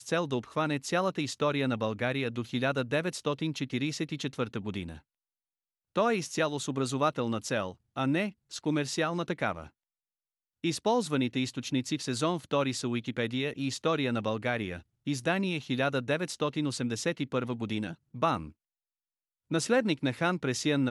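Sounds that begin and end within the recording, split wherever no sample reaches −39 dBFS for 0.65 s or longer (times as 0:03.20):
0:05.96–0:09.66
0:10.64–0:18.49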